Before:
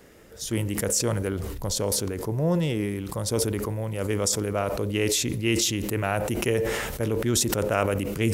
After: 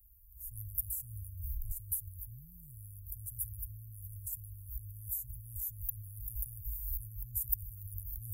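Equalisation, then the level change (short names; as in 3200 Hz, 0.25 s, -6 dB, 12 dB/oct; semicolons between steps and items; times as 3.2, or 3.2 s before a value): inverse Chebyshev band-stop 250–4600 Hz, stop band 70 dB; low shelf 65 Hz -9.5 dB; +8.0 dB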